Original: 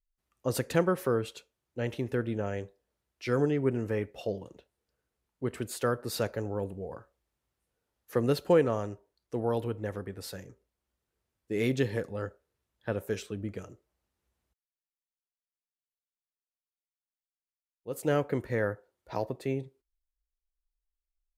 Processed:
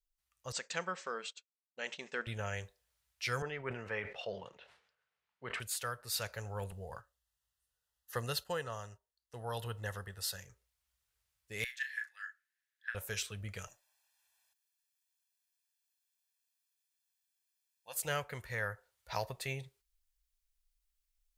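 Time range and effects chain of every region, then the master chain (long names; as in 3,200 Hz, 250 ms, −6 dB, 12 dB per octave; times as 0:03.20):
0:00.52–0:02.27: downward expander −40 dBFS + linear-phase brick-wall band-pass 160–8,300 Hz
0:03.42–0:05.60: band-pass filter 220–2,600 Hz + level that may fall only so fast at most 88 dB per second
0:06.71–0:10.40: Butterworth band-reject 2,300 Hz, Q 4.6 + noise gate −49 dBFS, range −8 dB
0:11.64–0:12.95: four-pole ladder high-pass 1,600 Hz, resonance 80% + double-tracking delay 34 ms −7 dB
0:13.67–0:17.96: high-pass filter 460 Hz + comb filter 1.2 ms, depth 91%
whole clip: guitar amp tone stack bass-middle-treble 10-0-10; speech leveller within 4 dB 0.5 s; level +5.5 dB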